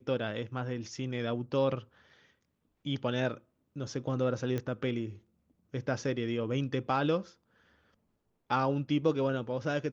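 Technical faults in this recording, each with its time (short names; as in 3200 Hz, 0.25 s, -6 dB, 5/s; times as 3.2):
4.58 pop -21 dBFS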